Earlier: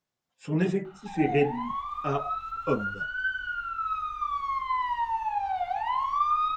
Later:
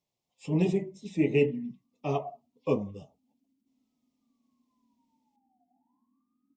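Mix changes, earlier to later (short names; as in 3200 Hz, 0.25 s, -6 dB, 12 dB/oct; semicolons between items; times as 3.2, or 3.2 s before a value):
background: add Butterworth band-pass 250 Hz, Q 4.9; master: add Butterworth band-stop 1500 Hz, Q 1.3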